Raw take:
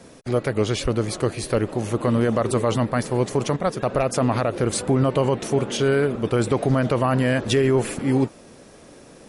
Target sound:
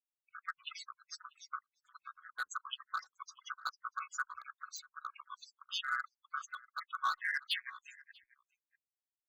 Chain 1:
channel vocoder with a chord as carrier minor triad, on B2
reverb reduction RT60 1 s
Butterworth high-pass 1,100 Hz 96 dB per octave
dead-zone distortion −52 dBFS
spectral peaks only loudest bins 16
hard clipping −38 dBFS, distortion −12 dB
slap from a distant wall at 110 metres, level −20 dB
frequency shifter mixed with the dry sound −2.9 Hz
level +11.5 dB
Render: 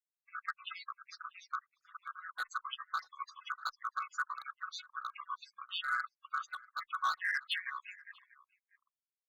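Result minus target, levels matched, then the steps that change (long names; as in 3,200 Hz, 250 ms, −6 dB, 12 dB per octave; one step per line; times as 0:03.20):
8,000 Hz band −7.0 dB; dead-zone distortion: distortion −6 dB
add after Butterworth high-pass: high-shelf EQ 5,600 Hz +11.5 dB
change: dead-zone distortion −43.5 dBFS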